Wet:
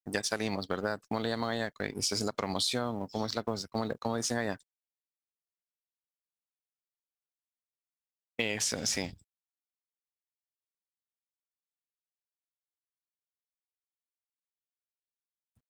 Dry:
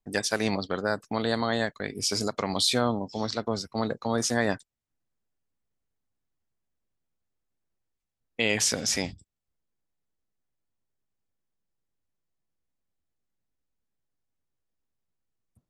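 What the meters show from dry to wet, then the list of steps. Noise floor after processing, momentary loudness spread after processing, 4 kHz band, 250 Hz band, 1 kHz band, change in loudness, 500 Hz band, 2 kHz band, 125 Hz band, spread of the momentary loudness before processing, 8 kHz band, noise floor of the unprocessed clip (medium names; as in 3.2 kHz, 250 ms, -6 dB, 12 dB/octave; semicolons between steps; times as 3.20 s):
under -85 dBFS, 6 LU, -5.0 dB, -5.5 dB, -5.0 dB, -5.0 dB, -5.5 dB, -6.0 dB, -5.0 dB, 8 LU, -5.0 dB, -83 dBFS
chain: companding laws mixed up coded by A; compression, threshold -28 dBFS, peak gain reduction 9.5 dB; trim +1 dB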